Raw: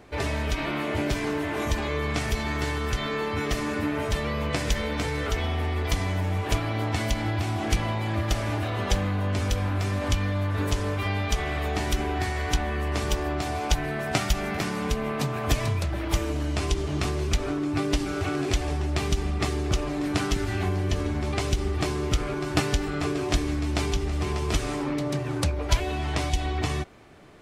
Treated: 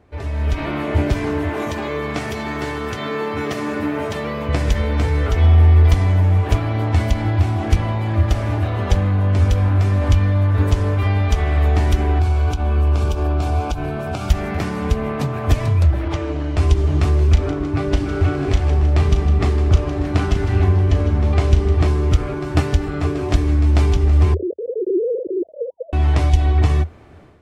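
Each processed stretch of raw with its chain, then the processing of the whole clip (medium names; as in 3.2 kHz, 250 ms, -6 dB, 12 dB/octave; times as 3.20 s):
1.49–4.49 s: Bessel high-pass 180 Hz, order 4 + modulation noise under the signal 33 dB
12.19–14.30 s: compression 10:1, threshold -25 dBFS + Butterworth band-stop 1.9 kHz, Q 3.8
16.08–16.57 s: band-pass 130–4900 Hz + peaking EQ 210 Hz -8 dB 0.31 oct
17.33–21.88 s: treble shelf 9.3 kHz -8.5 dB + doubling 36 ms -10 dB + two-band feedback delay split 680 Hz, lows 266 ms, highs 157 ms, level -12 dB
24.34–25.93 s: formants replaced by sine waves + steep low-pass 530 Hz 72 dB/octave + bass shelf 210 Hz -8.5 dB
whole clip: treble shelf 2.2 kHz -9 dB; level rider gain up to 11.5 dB; peaking EQ 80 Hz +12.5 dB 0.5 oct; trim -4.5 dB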